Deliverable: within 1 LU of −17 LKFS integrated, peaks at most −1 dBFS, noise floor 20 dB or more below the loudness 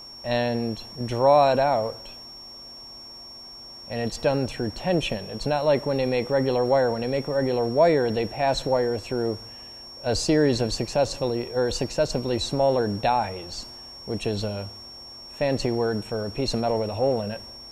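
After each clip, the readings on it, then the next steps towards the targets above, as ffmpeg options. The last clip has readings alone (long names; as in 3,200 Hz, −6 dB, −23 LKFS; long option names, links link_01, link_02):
interfering tone 5,500 Hz; level of the tone −40 dBFS; integrated loudness −24.5 LKFS; sample peak −7.0 dBFS; target loudness −17.0 LKFS
→ -af "bandreject=frequency=5500:width=30"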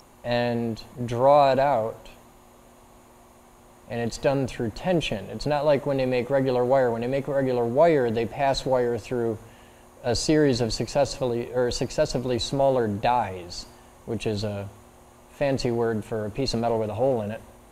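interfering tone none found; integrated loudness −24.5 LKFS; sample peak −7.0 dBFS; target loudness −17.0 LKFS
→ -af "volume=7.5dB,alimiter=limit=-1dB:level=0:latency=1"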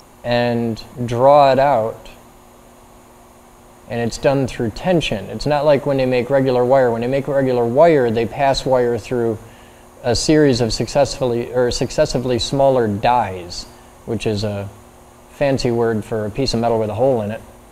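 integrated loudness −17.0 LKFS; sample peak −1.0 dBFS; background noise floor −45 dBFS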